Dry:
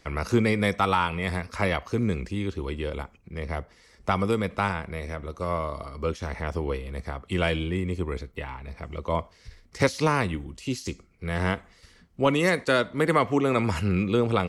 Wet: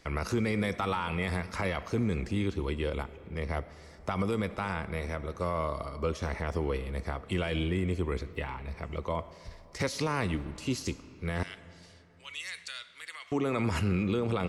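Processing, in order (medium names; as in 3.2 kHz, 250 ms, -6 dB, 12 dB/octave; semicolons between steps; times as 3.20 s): peak limiter -19.5 dBFS, peak gain reduction 9 dB; 11.43–13.32 s: Butterworth band-pass 5.3 kHz, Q 0.68; reverberation RT60 3.2 s, pre-delay 45 ms, DRR 16 dB; trim -1 dB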